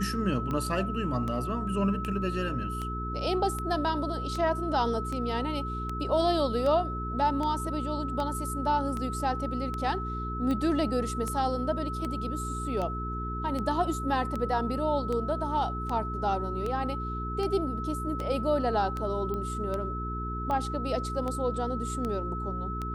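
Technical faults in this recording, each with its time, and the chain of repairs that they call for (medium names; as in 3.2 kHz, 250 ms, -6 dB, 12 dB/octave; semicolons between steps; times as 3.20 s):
hum 60 Hz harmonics 7 -35 dBFS
tick 78 rpm -21 dBFS
whine 1.3 kHz -35 dBFS
19.34 s: pop -23 dBFS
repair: de-click; band-stop 1.3 kHz, Q 30; de-hum 60 Hz, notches 7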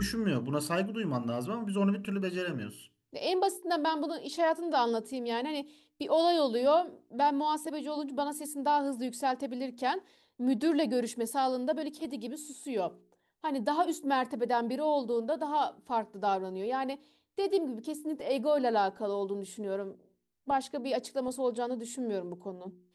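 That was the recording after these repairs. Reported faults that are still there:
nothing left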